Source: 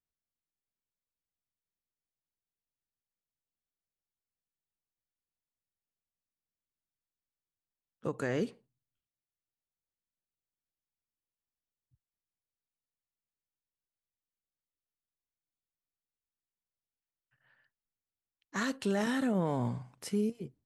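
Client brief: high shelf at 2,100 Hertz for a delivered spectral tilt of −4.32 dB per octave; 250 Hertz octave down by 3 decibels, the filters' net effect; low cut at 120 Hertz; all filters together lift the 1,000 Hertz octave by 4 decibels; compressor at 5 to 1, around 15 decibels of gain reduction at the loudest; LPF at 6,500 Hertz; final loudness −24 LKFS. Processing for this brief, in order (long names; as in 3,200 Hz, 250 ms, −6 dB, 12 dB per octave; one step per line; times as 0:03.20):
high-pass filter 120 Hz
low-pass filter 6,500 Hz
parametric band 250 Hz −3.5 dB
parametric band 1,000 Hz +4 dB
high-shelf EQ 2,100 Hz +5.5 dB
downward compressor 5 to 1, threshold −45 dBFS
level +24 dB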